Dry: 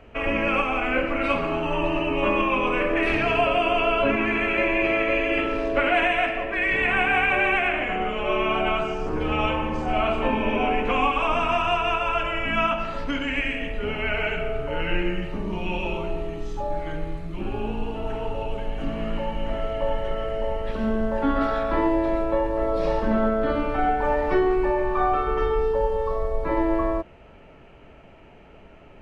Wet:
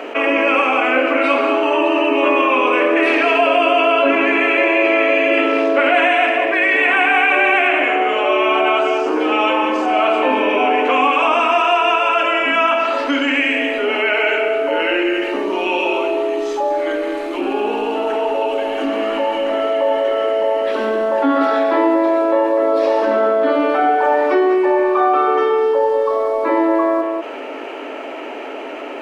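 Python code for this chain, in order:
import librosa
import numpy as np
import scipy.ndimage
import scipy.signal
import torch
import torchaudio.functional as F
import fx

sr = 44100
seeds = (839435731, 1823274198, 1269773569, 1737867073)

y = scipy.signal.sosfilt(scipy.signal.ellip(4, 1.0, 40, 270.0, 'highpass', fs=sr, output='sos'), x)
y = y + 10.0 ** (-10.0 / 20.0) * np.pad(y, (int(192 * sr / 1000.0), 0))[:len(y)]
y = fx.env_flatten(y, sr, amount_pct=50)
y = y * 10.0 ** (6.0 / 20.0)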